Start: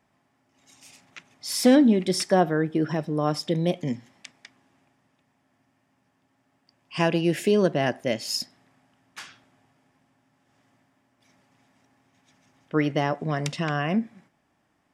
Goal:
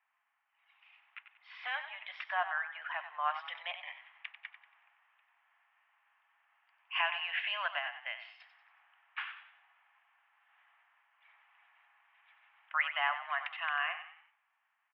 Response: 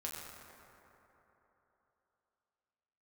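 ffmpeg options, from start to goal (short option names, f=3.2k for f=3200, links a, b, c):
-filter_complex "[0:a]highpass=f=980:w=0.5412,highpass=f=980:w=1.3066,dynaudnorm=f=780:g=7:m=9dB,alimiter=limit=-11.5dB:level=0:latency=1:release=410,asettb=1/sr,asplit=3[a][b][c];[a]atrim=end=7.784[d];[b]atrim=start=7.78:end=8.4,asetpts=PTS-STARTPTS,afade=t=in:d=0.004:c=qsin,afade=t=out:st=0.616:d=0.004:c=qsin,acompressor=threshold=-30dB:ratio=6[e];[c]atrim=start=8.396[f];[d][e]acrossfade=d=0.004:c1=hsin:c2=qsin[g];[g][f]acrossfade=d=0.004:c1=qsin:c2=hsin,asuperpass=centerf=1400:order=12:qfactor=0.59,asplit=5[h][i][j][k][l];[i]adelay=93,afreqshift=35,volume=-10.5dB[m];[j]adelay=186,afreqshift=70,volume=-18.5dB[n];[k]adelay=279,afreqshift=105,volume=-26.4dB[o];[l]adelay=372,afreqshift=140,volume=-34.4dB[p];[h][m][n][o][p]amix=inputs=5:normalize=0,volume=-5.5dB"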